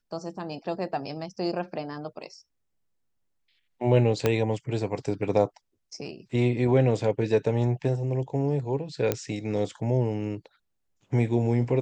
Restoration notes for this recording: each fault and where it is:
4.26 pop -9 dBFS
9.12 pop -10 dBFS

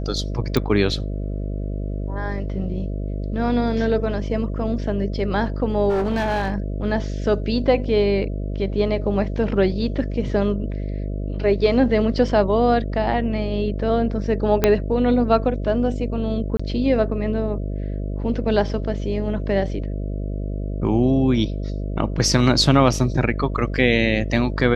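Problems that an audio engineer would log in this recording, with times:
buzz 50 Hz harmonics 13 -26 dBFS
0.57 pop -7 dBFS
5.89–6.58 clipped -17.5 dBFS
14.64 pop -2 dBFS
16.57–16.59 gap 25 ms

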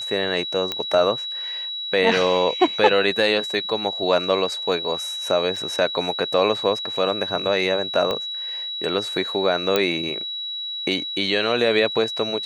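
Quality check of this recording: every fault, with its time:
tone 3900 Hz -27 dBFS
0.72 pop -10 dBFS
5.56 gap 4.3 ms
8.11 pop -12 dBFS
9.76 pop -5 dBFS

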